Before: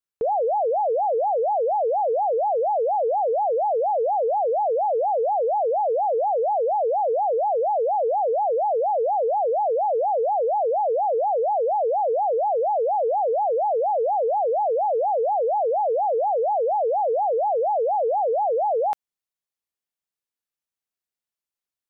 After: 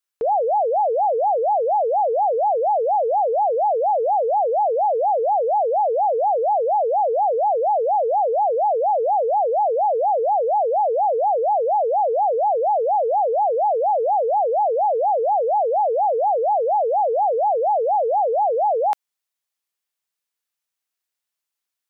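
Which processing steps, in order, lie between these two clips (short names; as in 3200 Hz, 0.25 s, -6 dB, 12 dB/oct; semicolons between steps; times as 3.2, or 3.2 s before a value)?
low shelf 490 Hz -11.5 dB; gain +7 dB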